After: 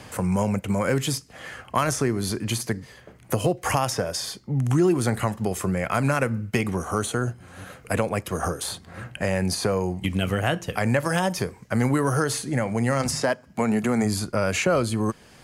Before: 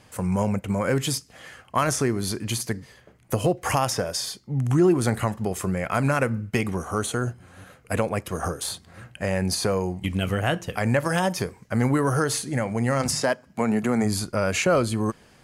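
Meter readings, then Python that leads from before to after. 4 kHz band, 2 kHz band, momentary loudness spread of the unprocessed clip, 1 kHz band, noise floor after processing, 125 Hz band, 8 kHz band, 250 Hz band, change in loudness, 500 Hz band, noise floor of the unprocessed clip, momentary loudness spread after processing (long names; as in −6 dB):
−0.5 dB, +0.5 dB, 8 LU, 0.0 dB, −51 dBFS, +0.5 dB, −0.5 dB, 0.0 dB, 0.0 dB, 0.0 dB, −55 dBFS, 8 LU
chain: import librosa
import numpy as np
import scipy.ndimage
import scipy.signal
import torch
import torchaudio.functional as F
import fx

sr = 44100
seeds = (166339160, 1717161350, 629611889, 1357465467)

y = fx.band_squash(x, sr, depth_pct=40)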